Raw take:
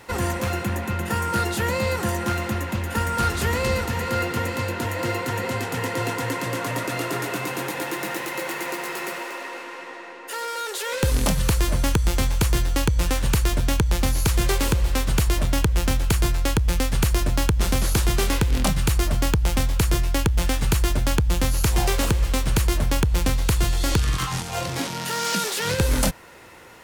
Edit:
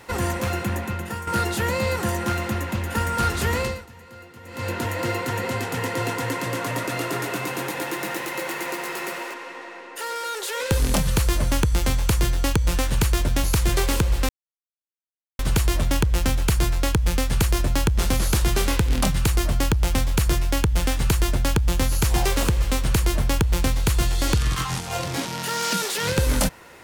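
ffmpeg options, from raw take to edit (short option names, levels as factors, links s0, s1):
-filter_complex "[0:a]asplit=7[s0][s1][s2][s3][s4][s5][s6];[s0]atrim=end=1.27,asetpts=PTS-STARTPTS,afade=t=out:st=0.77:d=0.5:silence=0.316228[s7];[s1]atrim=start=1.27:end=3.9,asetpts=PTS-STARTPTS,afade=t=in:d=0.004:c=hsin:silence=0.316228,afade=t=out:st=2.34:d=0.29:c=qua:silence=0.105925[s8];[s2]atrim=start=3.9:end=4.39,asetpts=PTS-STARTPTS,volume=0.106[s9];[s3]atrim=start=4.39:end=9.342,asetpts=PTS-STARTPTS,afade=t=in:d=0.29:c=qua:silence=0.105925[s10];[s4]atrim=start=9.658:end=13.762[s11];[s5]atrim=start=14.158:end=15.01,asetpts=PTS-STARTPTS,afade=t=out:st=0.848:d=0.004:c=hsin,apad=pad_dur=1.1[s12];[s6]atrim=start=15.01,asetpts=PTS-STARTPTS,afade=t=in:d=0.004:c=hsin[s13];[s7][s8][s9][s10]concat=n=4:v=0:a=1[s14];[s14][s11]acrossfade=d=0.004:c1=hsin:c2=hsin[s15];[s12][s13]concat=n=2:v=0:a=1[s16];[s15][s16]acrossfade=d=0.004:c1=hsin:c2=hsin"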